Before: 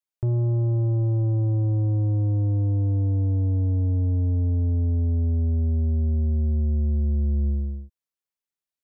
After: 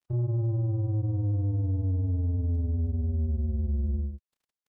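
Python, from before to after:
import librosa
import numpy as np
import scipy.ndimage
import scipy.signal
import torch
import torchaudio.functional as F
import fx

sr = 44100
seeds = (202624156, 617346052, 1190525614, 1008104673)

y = fx.dmg_crackle(x, sr, seeds[0], per_s=11.0, level_db=-47.0)
y = fx.stretch_vocoder(y, sr, factor=0.53)
y = fx.granulator(y, sr, seeds[1], grain_ms=100.0, per_s=20.0, spray_ms=24.0, spread_st=0)
y = y * librosa.db_to_amplitude(-4.0)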